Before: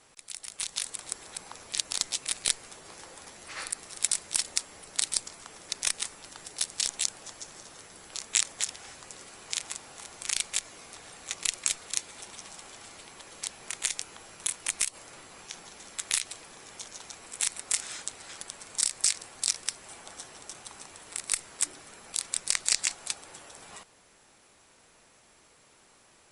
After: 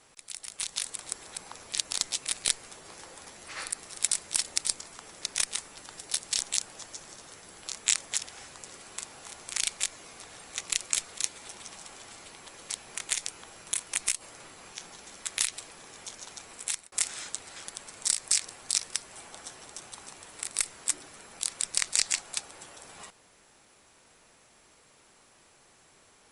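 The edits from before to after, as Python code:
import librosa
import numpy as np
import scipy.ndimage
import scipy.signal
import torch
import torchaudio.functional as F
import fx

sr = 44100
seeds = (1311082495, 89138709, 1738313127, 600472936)

y = fx.edit(x, sr, fx.cut(start_s=4.58, length_s=0.47),
    fx.cut(start_s=9.45, length_s=0.26),
    fx.fade_out_span(start_s=17.22, length_s=0.43, curve='qsin'), tone=tone)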